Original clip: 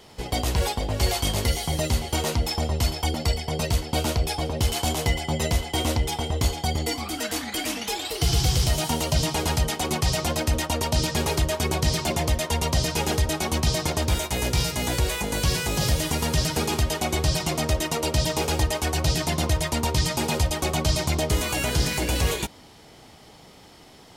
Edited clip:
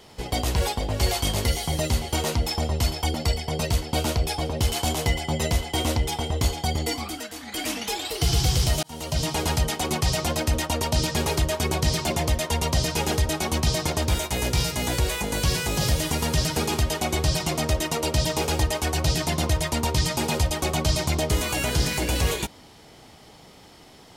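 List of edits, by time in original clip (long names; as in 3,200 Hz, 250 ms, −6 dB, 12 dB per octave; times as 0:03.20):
0:07.02–0:07.66: duck −9.5 dB, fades 0.28 s
0:08.83–0:09.50: fade in equal-power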